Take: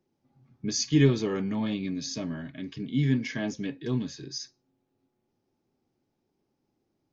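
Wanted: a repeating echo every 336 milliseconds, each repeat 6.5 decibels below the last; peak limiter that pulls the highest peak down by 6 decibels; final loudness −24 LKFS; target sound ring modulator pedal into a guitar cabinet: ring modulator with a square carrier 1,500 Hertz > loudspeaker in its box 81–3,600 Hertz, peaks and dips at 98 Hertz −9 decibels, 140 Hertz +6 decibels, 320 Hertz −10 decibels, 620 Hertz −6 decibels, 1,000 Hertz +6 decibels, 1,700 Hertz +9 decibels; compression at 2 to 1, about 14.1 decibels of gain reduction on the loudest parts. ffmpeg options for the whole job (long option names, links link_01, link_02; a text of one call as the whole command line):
ffmpeg -i in.wav -af "acompressor=threshold=-43dB:ratio=2,alimiter=level_in=6.5dB:limit=-24dB:level=0:latency=1,volume=-6.5dB,aecho=1:1:336|672|1008|1344|1680|2016:0.473|0.222|0.105|0.0491|0.0231|0.0109,aeval=exprs='val(0)*sgn(sin(2*PI*1500*n/s))':channel_layout=same,highpass=81,equalizer=frequency=98:width_type=q:width=4:gain=-9,equalizer=frequency=140:width_type=q:width=4:gain=6,equalizer=frequency=320:width_type=q:width=4:gain=-10,equalizer=frequency=620:width_type=q:width=4:gain=-6,equalizer=frequency=1000:width_type=q:width=4:gain=6,equalizer=frequency=1700:width_type=q:width=4:gain=9,lowpass=frequency=3600:width=0.5412,lowpass=frequency=3600:width=1.3066,volume=9dB" out.wav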